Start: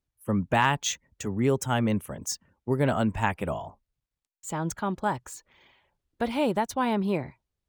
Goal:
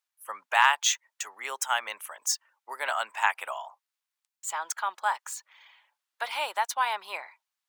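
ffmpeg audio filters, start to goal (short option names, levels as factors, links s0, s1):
-af "highpass=f=890:w=0.5412,highpass=f=890:w=1.3066,volume=1.68"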